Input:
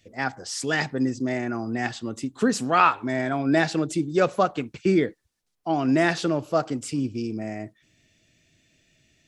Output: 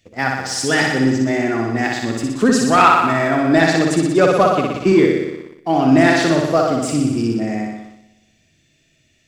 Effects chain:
flutter between parallel walls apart 10.4 metres, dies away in 1.1 s
leveller curve on the samples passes 1
level +3 dB

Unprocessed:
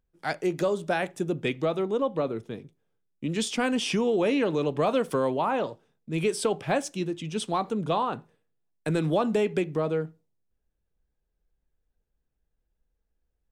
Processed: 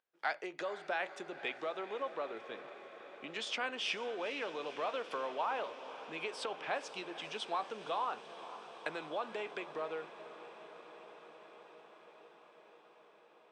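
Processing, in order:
downward compressor, threshold −31 dBFS, peak gain reduction 11 dB
band-pass filter 740–3,700 Hz
on a send: feedback delay with all-pass diffusion 483 ms, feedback 79%, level −14 dB
on the sum: level +2 dB

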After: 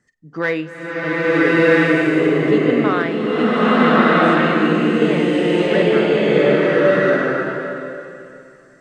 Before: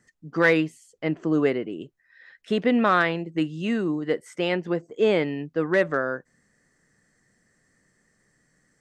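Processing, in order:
high-shelf EQ 7,400 Hz −7.5 dB
flutter between parallel walls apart 8 metres, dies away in 0.21 s
slow-attack reverb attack 1,320 ms, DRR −11 dB
level −1.5 dB

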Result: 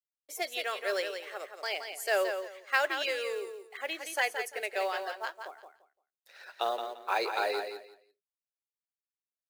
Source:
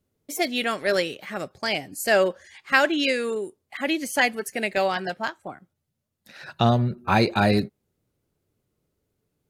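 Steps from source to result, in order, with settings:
elliptic high-pass filter 410 Hz, stop band 70 dB
log-companded quantiser 6 bits
repeating echo 172 ms, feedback 21%, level −7.5 dB
level −8 dB

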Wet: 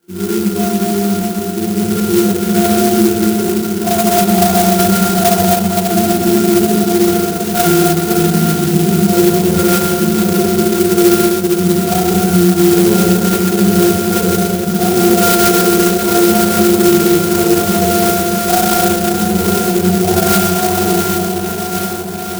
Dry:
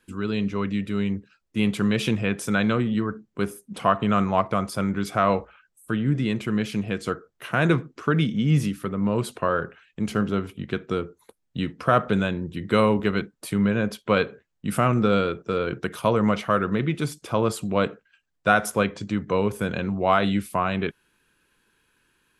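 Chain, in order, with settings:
high-pass filter 340 Hz 12 dB per octave
high shelf with overshoot 3,000 Hz +8 dB, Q 3
in parallel at +2 dB: downward compressor, threshold −32 dBFS, peak gain reduction 16.5 dB
on the sum: hard clipping −21 dBFS, distortion −7 dB
high-frequency loss of the air 460 metres
resonances in every octave F, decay 0.28 s
on a send: feedback delay with all-pass diffusion 627 ms, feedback 75%, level −8 dB
on the sum: four-comb reverb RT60 3.1 s, combs from 33 ms, DRR −6.5 dB
boost into a limiter +26 dB
converter with an unsteady clock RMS 0.12 ms
level −1 dB

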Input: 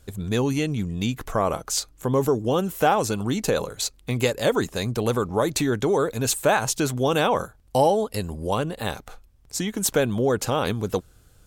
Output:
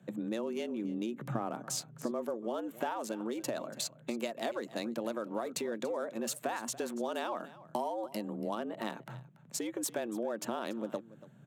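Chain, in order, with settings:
adaptive Wiener filter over 9 samples
0:00.84–0:02.11: low-shelf EQ 360 Hz +6 dB
downward compressor 6 to 1, threshold −30 dBFS, peak gain reduction 15 dB
frequency shifter +110 Hz
single-tap delay 285 ms −18 dB
level −3.5 dB

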